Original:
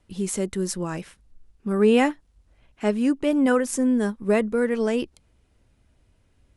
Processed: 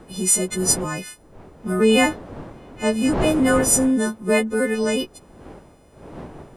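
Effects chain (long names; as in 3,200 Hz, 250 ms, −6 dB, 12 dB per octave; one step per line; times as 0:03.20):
every partial snapped to a pitch grid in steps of 3 semitones
wind on the microphone 500 Hz −35 dBFS
level +2 dB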